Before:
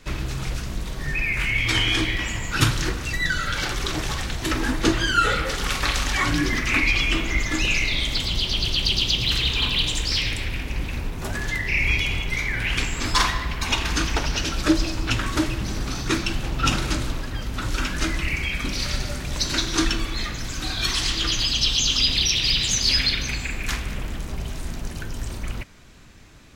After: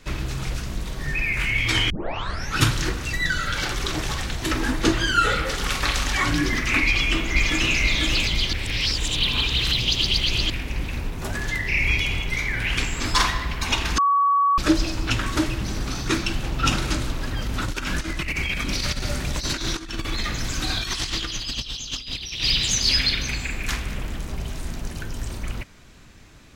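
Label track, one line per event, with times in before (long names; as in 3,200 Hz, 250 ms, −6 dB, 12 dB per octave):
1.900000	1.900000	tape start 0.68 s
6.860000	7.780000	delay throw 490 ms, feedback 50%, level −3 dB
8.530000	10.500000	reverse
13.980000	14.580000	beep over 1,130 Hz −15.5 dBFS
17.210000	22.440000	compressor whose output falls as the input rises −26 dBFS, ratio −0.5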